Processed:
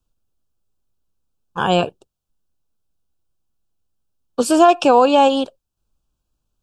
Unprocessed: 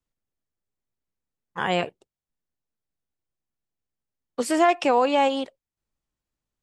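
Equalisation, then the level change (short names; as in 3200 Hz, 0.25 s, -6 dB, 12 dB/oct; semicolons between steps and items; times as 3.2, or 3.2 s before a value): Butterworth band-stop 2000 Hz, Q 2.1; low shelf 89 Hz +9.5 dB; +7.5 dB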